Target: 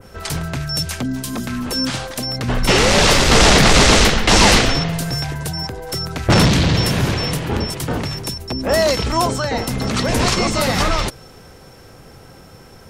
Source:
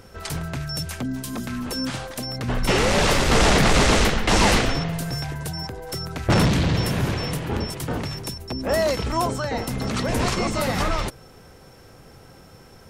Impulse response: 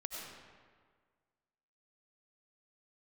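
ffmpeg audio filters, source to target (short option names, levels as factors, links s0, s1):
-af "adynamicequalizer=threshold=0.0178:dfrequency=4900:dqfactor=0.7:tfrequency=4900:tqfactor=0.7:attack=5:release=100:ratio=0.375:range=2.5:mode=boostabove:tftype=bell,volume=1.78"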